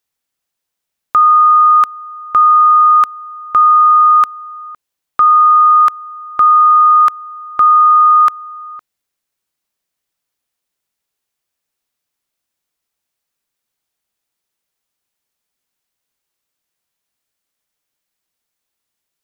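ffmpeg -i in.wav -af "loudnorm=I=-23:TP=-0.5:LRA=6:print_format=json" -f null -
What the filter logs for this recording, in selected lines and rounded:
"input_i" : "-8.6",
"input_tp" : "-4.4",
"input_lra" : "3.7",
"input_thresh" : "-19.7",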